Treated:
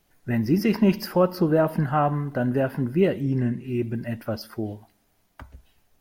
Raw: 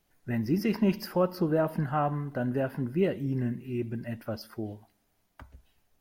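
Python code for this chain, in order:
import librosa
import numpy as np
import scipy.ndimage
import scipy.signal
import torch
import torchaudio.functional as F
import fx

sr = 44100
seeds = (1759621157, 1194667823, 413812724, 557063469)

y = fx.lowpass(x, sr, hz=10000.0, slope=12, at=(3.2, 3.68))
y = y * 10.0 ** (6.0 / 20.0)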